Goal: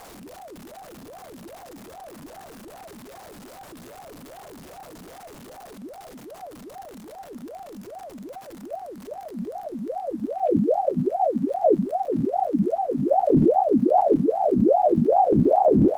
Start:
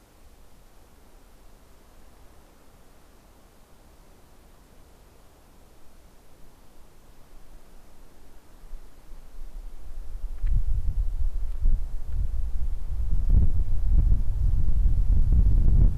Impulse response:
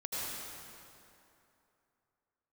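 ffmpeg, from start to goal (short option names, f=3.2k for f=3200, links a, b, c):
-af "aeval=exprs='val(0)+0.5*0.0112*sgn(val(0))':c=same,aeval=exprs='val(0)*sin(2*PI*490*n/s+490*0.6/2.5*sin(2*PI*2.5*n/s))':c=same,volume=2dB"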